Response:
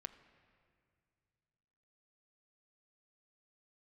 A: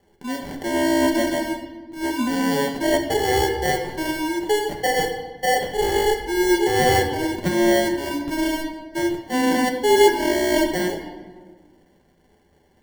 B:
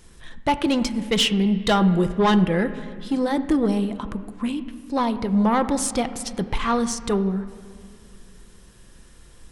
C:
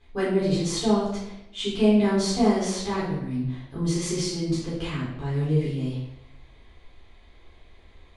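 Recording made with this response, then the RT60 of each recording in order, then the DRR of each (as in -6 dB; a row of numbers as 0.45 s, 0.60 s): B; 1.4 s, 2.3 s, 0.80 s; 1.0 dB, 8.5 dB, -9.0 dB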